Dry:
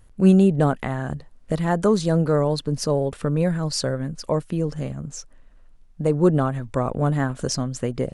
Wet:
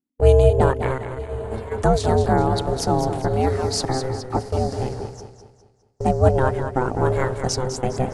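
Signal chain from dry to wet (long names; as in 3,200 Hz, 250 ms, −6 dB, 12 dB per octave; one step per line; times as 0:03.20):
ring modulation 260 Hz
0:00.98–0:01.78: stiff-string resonator 110 Hz, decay 0.26 s, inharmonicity 0.002
feedback delay with all-pass diffusion 904 ms, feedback 44%, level −14.5 dB
noise gate −33 dBFS, range −37 dB
0:03.85–0:04.37: all-pass dispersion lows, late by 41 ms, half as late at 2,200 Hz
feedback echo with a swinging delay time 204 ms, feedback 40%, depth 57 cents, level −9 dB
level +4 dB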